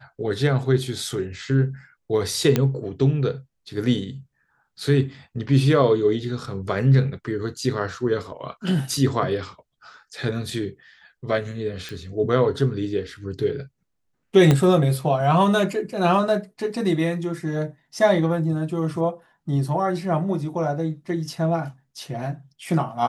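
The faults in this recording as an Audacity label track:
2.560000	2.560000	pop -6 dBFS
11.890000	11.890000	pop
14.510000	14.510000	pop -6 dBFS

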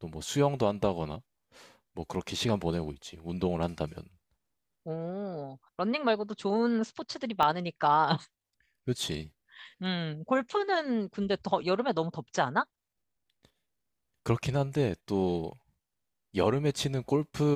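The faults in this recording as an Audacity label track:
7.430000	7.430000	pop -15 dBFS

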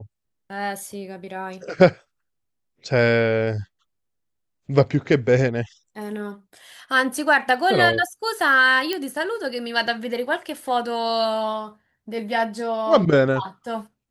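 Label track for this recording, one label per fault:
8.930000	8.930000	pop -10 dBFS

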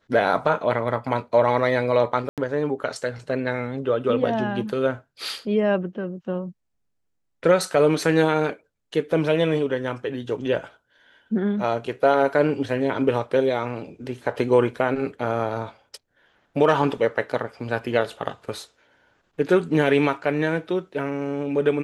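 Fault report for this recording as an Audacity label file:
2.290000	2.380000	dropout 87 ms

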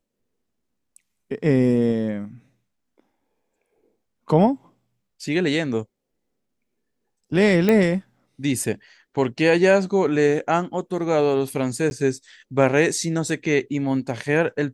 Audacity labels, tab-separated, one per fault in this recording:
7.690000	7.690000	pop -7 dBFS
11.900000	11.910000	dropout 11 ms

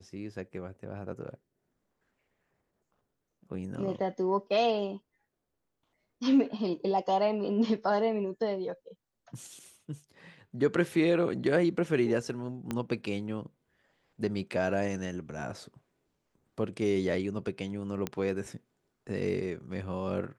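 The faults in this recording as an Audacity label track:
12.710000	12.710000	pop -19 dBFS
18.070000	18.070000	pop -17 dBFS

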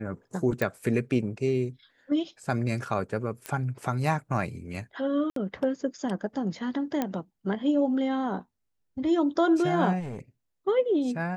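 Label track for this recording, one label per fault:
0.620000	0.620000	pop -14 dBFS
3.460000	3.460000	pop -17 dBFS
5.300000	5.360000	dropout 63 ms
7.020000	7.020000	pop -14 dBFS
9.990000	10.190000	clipped -32 dBFS

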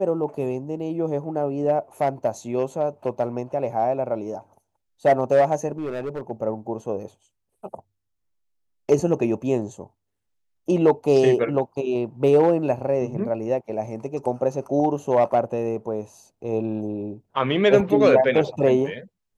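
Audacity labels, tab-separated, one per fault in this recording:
5.780000	6.310000	clipped -24.5 dBFS

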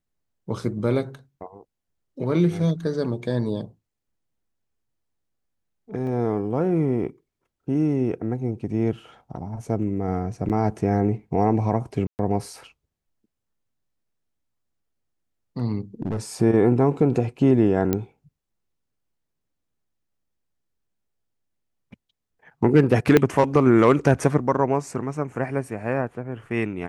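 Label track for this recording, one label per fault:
6.070000	6.070000	dropout 2.3 ms
10.490000	10.500000	dropout 8.2 ms
12.070000	12.190000	dropout 119 ms
16.020000	16.170000	clipped -20.5 dBFS
17.930000	17.930000	pop -9 dBFS
23.170000	23.170000	pop -4 dBFS

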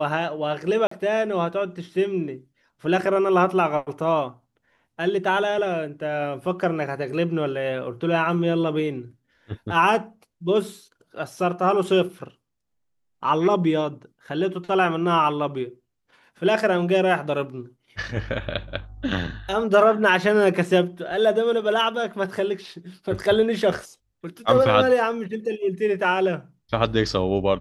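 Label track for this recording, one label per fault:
0.870000	0.910000	dropout 44 ms

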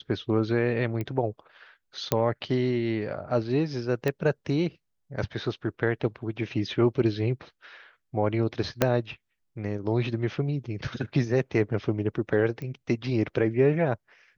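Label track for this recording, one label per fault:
1.010000	1.010000	pop -19 dBFS
2.120000	2.120000	pop -8 dBFS
4.080000	4.080000	pop -14 dBFS
8.820000	8.820000	pop -6 dBFS
12.620000	12.620000	pop -25 dBFS

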